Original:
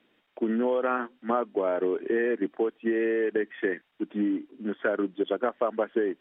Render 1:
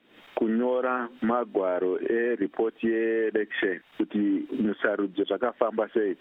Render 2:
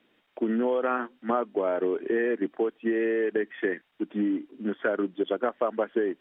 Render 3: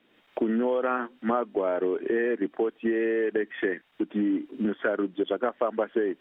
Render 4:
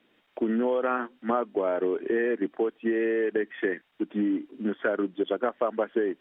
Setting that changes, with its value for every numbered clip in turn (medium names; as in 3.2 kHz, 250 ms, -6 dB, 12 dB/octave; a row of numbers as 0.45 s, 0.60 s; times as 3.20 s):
recorder AGC, rising by: 86 dB/s, 5.2 dB/s, 34 dB/s, 13 dB/s